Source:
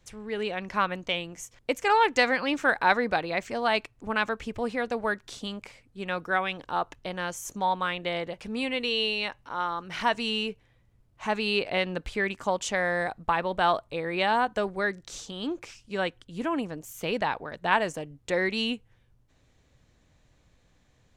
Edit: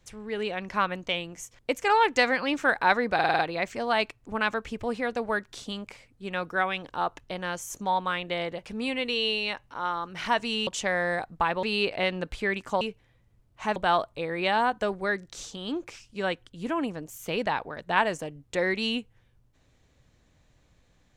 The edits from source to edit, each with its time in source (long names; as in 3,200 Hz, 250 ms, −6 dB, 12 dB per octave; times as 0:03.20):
0:03.14: stutter 0.05 s, 6 plays
0:10.42–0:11.37: swap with 0:12.55–0:13.51